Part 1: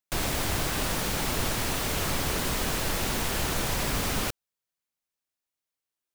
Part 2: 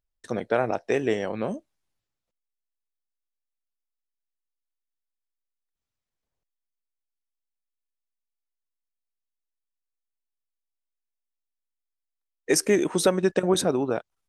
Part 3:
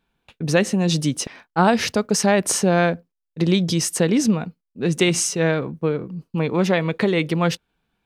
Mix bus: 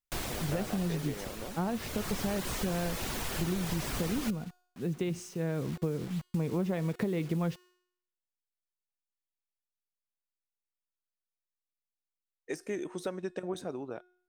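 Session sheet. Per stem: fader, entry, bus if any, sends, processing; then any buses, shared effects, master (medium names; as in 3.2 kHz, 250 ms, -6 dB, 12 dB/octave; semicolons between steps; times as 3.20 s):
+0.5 dB, 0.00 s, no send, reverb removal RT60 0.52 s; auto duck -12 dB, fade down 1.85 s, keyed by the second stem
-8.5 dB, 0.00 s, no send, de-esser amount 55%
5.47 s -11 dB -> 5.74 s -4 dB, 0.00 s, no send, tilt EQ -3 dB/octave; bit crusher 6-bit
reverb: none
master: feedback comb 360 Hz, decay 0.66 s, mix 50%; compression 6:1, threshold -28 dBFS, peak gain reduction 9.5 dB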